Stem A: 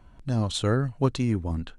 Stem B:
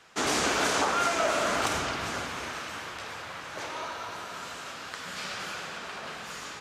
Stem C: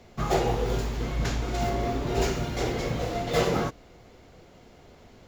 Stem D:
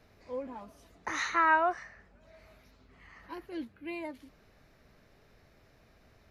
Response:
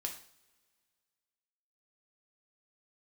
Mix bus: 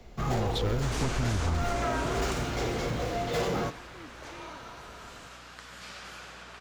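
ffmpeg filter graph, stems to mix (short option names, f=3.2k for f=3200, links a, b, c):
-filter_complex "[0:a]afwtdn=0.0178,asoftclip=type=tanh:threshold=-25.5dB,asubboost=boost=5.5:cutoff=120,volume=1dB[a];[1:a]aeval=exprs='val(0)+0.00398*(sin(2*PI*60*n/s)+sin(2*PI*2*60*n/s)/2+sin(2*PI*3*60*n/s)/3+sin(2*PI*4*60*n/s)/4+sin(2*PI*5*60*n/s)/5)':c=same,adelay=650,volume=-8dB[b];[2:a]asoftclip=type=tanh:threshold=-23dB,volume=-3dB,asplit=2[c][d];[d]volume=-8.5dB[e];[3:a]adelay=450,volume=-11.5dB[f];[4:a]atrim=start_sample=2205[g];[e][g]afir=irnorm=-1:irlink=0[h];[a][b][c][f][h]amix=inputs=5:normalize=0,acompressor=threshold=-24dB:ratio=6"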